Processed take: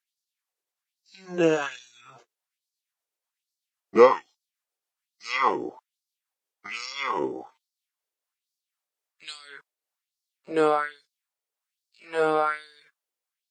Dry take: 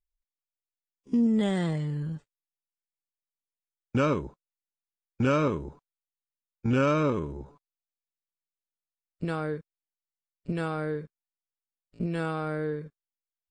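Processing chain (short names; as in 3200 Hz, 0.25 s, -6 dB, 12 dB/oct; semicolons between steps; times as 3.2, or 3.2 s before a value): gliding pitch shift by -4 st ending unshifted; LFO high-pass sine 1.2 Hz 400–4800 Hz; gain +8 dB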